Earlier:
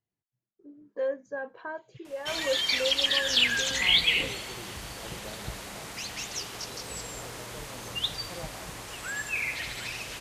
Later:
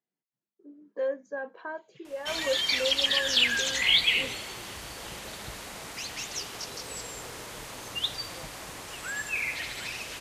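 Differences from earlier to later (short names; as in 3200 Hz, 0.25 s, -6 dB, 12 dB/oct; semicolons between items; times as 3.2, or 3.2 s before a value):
speech: add steep high-pass 170 Hz 36 dB/oct; second sound -6.0 dB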